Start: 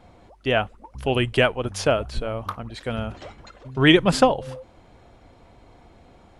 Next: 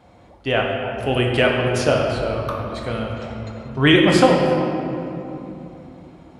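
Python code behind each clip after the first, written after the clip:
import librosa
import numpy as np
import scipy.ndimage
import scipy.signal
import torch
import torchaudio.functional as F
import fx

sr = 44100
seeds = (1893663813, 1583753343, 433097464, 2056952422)

y = scipy.signal.sosfilt(scipy.signal.butter(2, 67.0, 'highpass', fs=sr, output='sos'), x)
y = fx.room_shoebox(y, sr, seeds[0], volume_m3=130.0, walls='hard', distance_m=0.46)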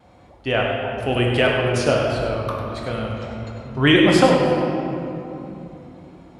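y = fx.vibrato(x, sr, rate_hz=1.5, depth_cents=30.0)
y = y + 10.0 ** (-8.5 / 20.0) * np.pad(y, (int(100 * sr / 1000.0), 0))[:len(y)]
y = y * librosa.db_to_amplitude(-1.0)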